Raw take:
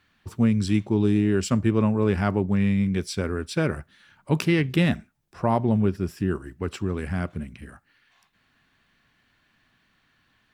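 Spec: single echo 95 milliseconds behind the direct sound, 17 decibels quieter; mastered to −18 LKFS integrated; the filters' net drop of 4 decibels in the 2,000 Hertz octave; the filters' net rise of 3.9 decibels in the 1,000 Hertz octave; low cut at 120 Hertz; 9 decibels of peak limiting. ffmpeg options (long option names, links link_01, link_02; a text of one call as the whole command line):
ffmpeg -i in.wav -af "highpass=120,equalizer=frequency=1000:width_type=o:gain=6.5,equalizer=frequency=2000:width_type=o:gain=-7.5,alimiter=limit=-17dB:level=0:latency=1,aecho=1:1:95:0.141,volume=10dB" out.wav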